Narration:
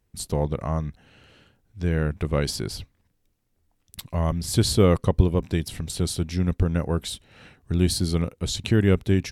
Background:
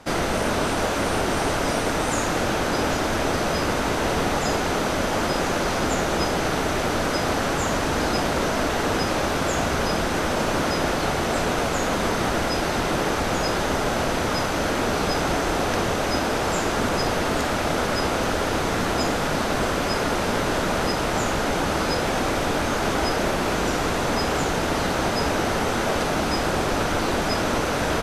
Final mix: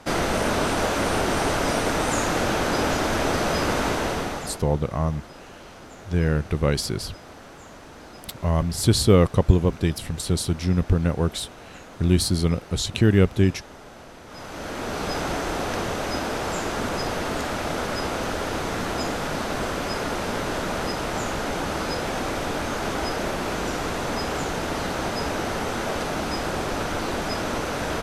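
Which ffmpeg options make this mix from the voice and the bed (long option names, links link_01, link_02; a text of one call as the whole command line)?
ffmpeg -i stem1.wav -i stem2.wav -filter_complex "[0:a]adelay=4300,volume=2dB[link_01];[1:a]volume=16.5dB,afade=type=out:start_time=3.85:duration=0.79:silence=0.0944061,afade=type=in:start_time=14.26:duration=0.89:silence=0.149624[link_02];[link_01][link_02]amix=inputs=2:normalize=0" out.wav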